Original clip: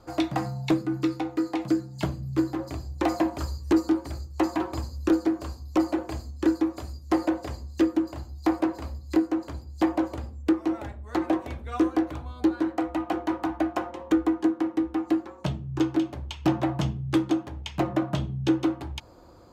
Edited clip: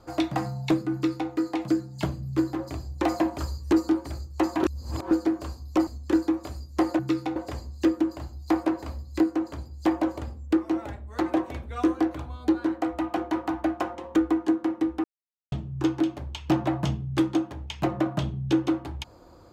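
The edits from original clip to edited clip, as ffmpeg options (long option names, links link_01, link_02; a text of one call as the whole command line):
ffmpeg -i in.wav -filter_complex "[0:a]asplit=8[link_01][link_02][link_03][link_04][link_05][link_06][link_07][link_08];[link_01]atrim=end=4.632[link_09];[link_02]atrim=start=4.628:end=5.112,asetpts=PTS-STARTPTS,areverse[link_10];[link_03]atrim=start=5.108:end=5.872[link_11];[link_04]atrim=start=6.198:end=7.322[link_12];[link_05]atrim=start=0.928:end=1.302[link_13];[link_06]atrim=start=7.318:end=15,asetpts=PTS-STARTPTS,afade=type=out:start_time=7.678:duration=0.004:curve=hsin[link_14];[link_07]atrim=start=15:end=15.48,asetpts=PTS-STARTPTS,volume=0[link_15];[link_08]atrim=start=15.48,asetpts=PTS-STARTPTS,afade=type=in:duration=0.004:curve=hsin[link_16];[link_09][link_10]acrossfade=duration=0.004:curve1=hsin:curve2=hsin[link_17];[link_17][link_11]acrossfade=duration=0.004:curve1=hsin:curve2=hsin[link_18];[link_18][link_12]acrossfade=duration=0.004:curve1=hsin:curve2=hsin[link_19];[link_19][link_13]acrossfade=duration=0.004:curve1=hsin:curve2=hsin[link_20];[link_14][link_15][link_16]concat=n=3:v=0:a=1[link_21];[link_20][link_21]acrossfade=duration=0.004:curve1=hsin:curve2=hsin" out.wav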